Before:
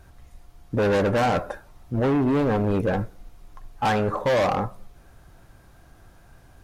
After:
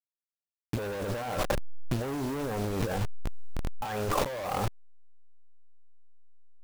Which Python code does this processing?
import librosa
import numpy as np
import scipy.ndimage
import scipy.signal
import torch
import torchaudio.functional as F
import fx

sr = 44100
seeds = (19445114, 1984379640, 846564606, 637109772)

y = fx.delta_hold(x, sr, step_db=-28.5)
y = fx.dynamic_eq(y, sr, hz=210.0, q=0.94, threshold_db=-35.0, ratio=4.0, max_db=-5)
y = fx.over_compress(y, sr, threshold_db=-32.0, ratio=-1.0)
y = F.gain(torch.from_numpy(y), 2.0).numpy()